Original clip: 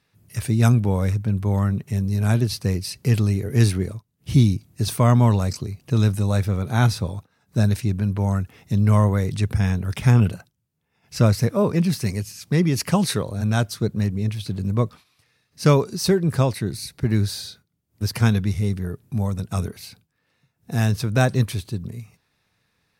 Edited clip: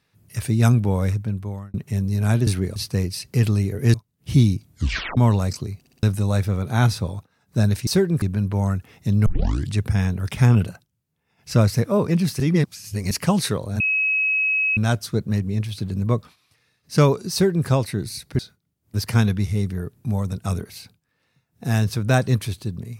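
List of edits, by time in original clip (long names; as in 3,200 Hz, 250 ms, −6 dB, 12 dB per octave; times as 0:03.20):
0:01.10–0:01.74: fade out
0:03.65–0:03.94: move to 0:02.47
0:04.69: tape stop 0.48 s
0:05.79: stutter in place 0.06 s, 4 plays
0:08.91: tape start 0.46 s
0:12.05–0:12.76: reverse
0:13.45: insert tone 2,560 Hz −17.5 dBFS 0.97 s
0:16.00–0:16.35: duplicate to 0:07.87
0:17.07–0:17.46: remove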